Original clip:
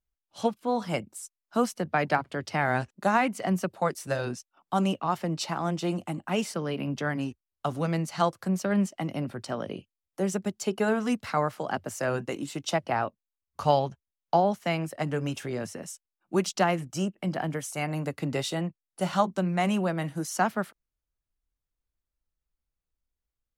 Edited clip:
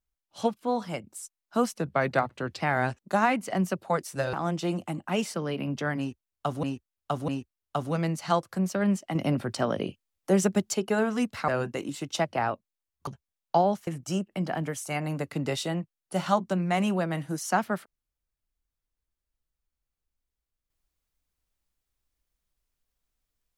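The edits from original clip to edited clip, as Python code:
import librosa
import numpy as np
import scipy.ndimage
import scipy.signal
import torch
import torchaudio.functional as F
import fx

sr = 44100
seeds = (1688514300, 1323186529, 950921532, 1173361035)

y = fx.edit(x, sr, fx.fade_out_to(start_s=0.71, length_s=0.33, floor_db=-7.5),
    fx.speed_span(start_s=1.78, length_s=0.74, speed=0.9),
    fx.cut(start_s=4.25, length_s=1.28),
    fx.repeat(start_s=7.18, length_s=0.65, count=3),
    fx.clip_gain(start_s=9.05, length_s=1.59, db=5.5),
    fx.cut(start_s=11.38, length_s=0.64),
    fx.cut(start_s=13.61, length_s=0.25),
    fx.cut(start_s=14.66, length_s=2.08), tone=tone)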